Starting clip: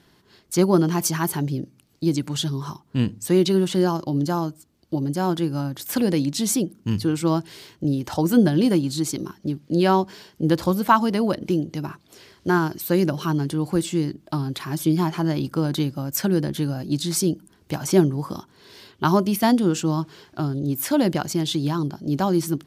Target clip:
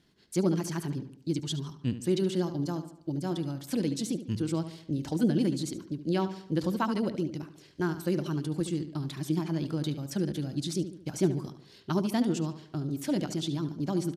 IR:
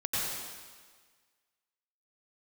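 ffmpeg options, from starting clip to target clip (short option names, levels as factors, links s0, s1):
-filter_complex "[0:a]deesser=0.4,lowpass=10000,equalizer=f=1000:t=o:w=1.4:g=-7,atempo=1.6,asplit=2[s0][s1];[s1]adelay=73,lowpass=f=4200:p=1,volume=0.282,asplit=2[s2][s3];[s3]adelay=73,lowpass=f=4200:p=1,volume=0.48,asplit=2[s4][s5];[s5]adelay=73,lowpass=f=4200:p=1,volume=0.48,asplit=2[s6][s7];[s7]adelay=73,lowpass=f=4200:p=1,volume=0.48,asplit=2[s8][s9];[s9]adelay=73,lowpass=f=4200:p=1,volume=0.48[s10];[s2][s4][s6][s8][s10]amix=inputs=5:normalize=0[s11];[s0][s11]amix=inputs=2:normalize=0,volume=0.422"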